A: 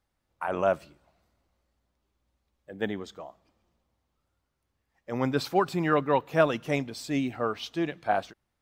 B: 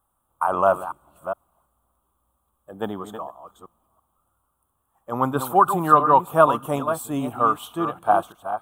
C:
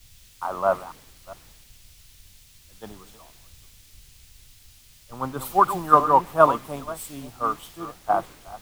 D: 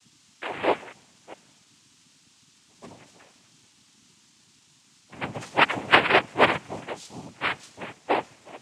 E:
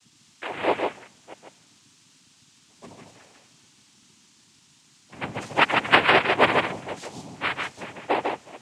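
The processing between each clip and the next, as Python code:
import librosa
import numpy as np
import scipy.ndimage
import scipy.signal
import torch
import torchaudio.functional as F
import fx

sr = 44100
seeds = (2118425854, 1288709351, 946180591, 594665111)

y1 = fx.reverse_delay(x, sr, ms=333, wet_db=-9.5)
y1 = fx.curve_eq(y1, sr, hz=(490.0, 1200.0, 2000.0, 3300.0, 4900.0, 9100.0), db=(0, 14, -16, -1, -19, 14))
y1 = y1 * librosa.db_to_amplitude(2.0)
y2 = fx.dmg_noise_colour(y1, sr, seeds[0], colour='pink', level_db=-38.0)
y2 = fx.band_widen(y2, sr, depth_pct=100)
y2 = y2 * librosa.db_to_amplitude(-8.0)
y3 = fx.noise_vocoder(y2, sr, seeds[1], bands=4)
y3 = y3 * librosa.db_to_amplitude(-2.5)
y4 = y3 + 10.0 ** (-4.0 / 20.0) * np.pad(y3, (int(149 * sr / 1000.0), 0))[:len(y3)]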